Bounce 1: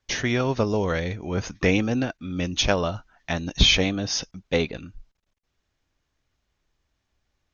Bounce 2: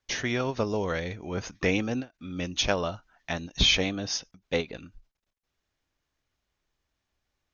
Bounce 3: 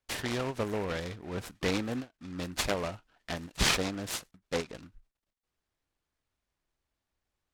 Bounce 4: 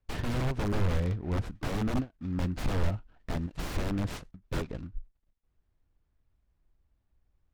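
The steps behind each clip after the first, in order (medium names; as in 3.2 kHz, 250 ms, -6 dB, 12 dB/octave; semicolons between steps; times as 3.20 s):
bass shelf 220 Hz -4.5 dB; endings held to a fixed fall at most 320 dB/s; trim -3.5 dB
delay time shaken by noise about 1.3 kHz, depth 0.073 ms; trim -4.5 dB
integer overflow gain 29.5 dB; RIAA curve playback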